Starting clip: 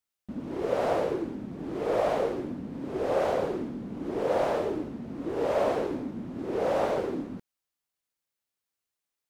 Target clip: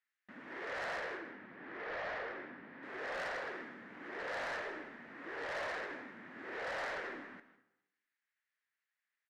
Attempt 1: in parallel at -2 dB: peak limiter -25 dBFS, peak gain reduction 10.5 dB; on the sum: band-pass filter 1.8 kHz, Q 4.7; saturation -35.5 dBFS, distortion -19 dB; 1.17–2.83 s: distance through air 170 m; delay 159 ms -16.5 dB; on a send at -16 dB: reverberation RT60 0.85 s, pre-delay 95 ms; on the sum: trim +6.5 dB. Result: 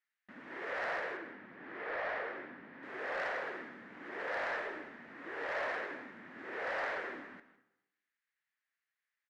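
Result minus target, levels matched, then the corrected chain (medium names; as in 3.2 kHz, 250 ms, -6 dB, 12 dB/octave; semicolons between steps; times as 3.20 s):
saturation: distortion -8 dB
in parallel at -2 dB: peak limiter -25 dBFS, peak gain reduction 10.5 dB; on the sum: band-pass filter 1.8 kHz, Q 4.7; saturation -42.5 dBFS, distortion -11 dB; 1.17–2.83 s: distance through air 170 m; delay 159 ms -16.5 dB; on a send at -16 dB: reverberation RT60 0.85 s, pre-delay 95 ms; on the sum: trim +6.5 dB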